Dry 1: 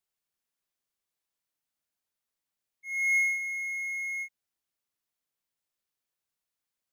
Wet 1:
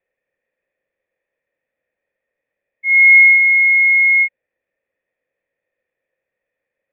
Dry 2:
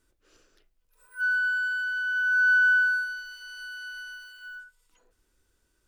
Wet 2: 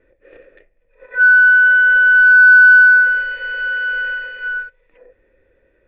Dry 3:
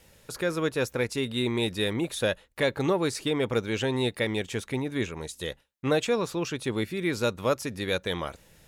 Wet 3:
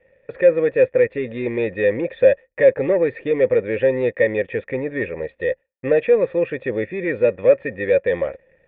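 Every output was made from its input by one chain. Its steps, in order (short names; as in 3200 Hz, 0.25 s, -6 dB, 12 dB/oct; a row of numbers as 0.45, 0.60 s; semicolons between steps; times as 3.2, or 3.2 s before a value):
sample leveller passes 2; vocal tract filter e; normalise peaks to -3 dBFS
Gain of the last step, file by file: +32.5, +33.0, +13.0 dB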